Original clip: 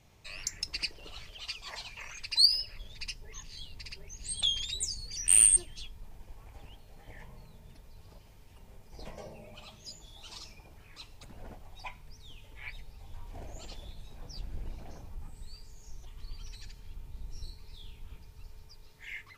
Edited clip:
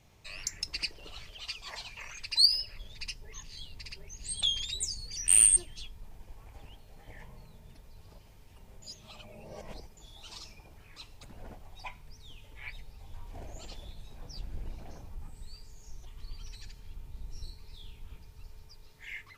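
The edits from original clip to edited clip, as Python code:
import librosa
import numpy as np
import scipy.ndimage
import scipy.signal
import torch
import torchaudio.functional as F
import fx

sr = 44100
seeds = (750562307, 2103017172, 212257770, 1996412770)

y = fx.edit(x, sr, fx.reverse_span(start_s=8.82, length_s=1.15), tone=tone)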